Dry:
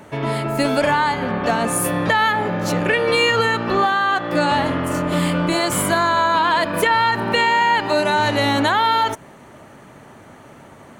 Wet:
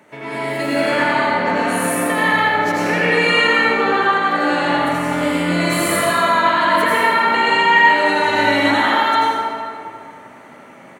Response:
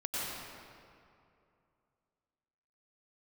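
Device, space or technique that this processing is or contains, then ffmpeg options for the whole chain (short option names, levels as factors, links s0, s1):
PA in a hall: -filter_complex "[0:a]asettb=1/sr,asplit=3[s0][s1][s2];[s0]atrim=end=5.684[s3];[s1]atrim=start=5.68:end=6.17,asetpts=PTS-STARTPTS,afade=t=in:d=0.004:c=qsin,afade=t=out:st=0.486:d=0.004:c=qsin,aecho=1:1:1.6:0.81,atrim=end_sample=21609[s4];[s2]atrim=start=6.166[s5];[s3][s4]acrossfade=d=0.004:c1=hsin:c2=qsin[s6];[s6][s5]acrossfade=d=0.004:c1=qsin:c2=hsin,highpass=190,equalizer=f=2100:t=o:w=0.52:g=7,aecho=1:1:82:0.562[s7];[1:a]atrim=start_sample=2205[s8];[s7][s8]afir=irnorm=-1:irlink=0,volume=0.531"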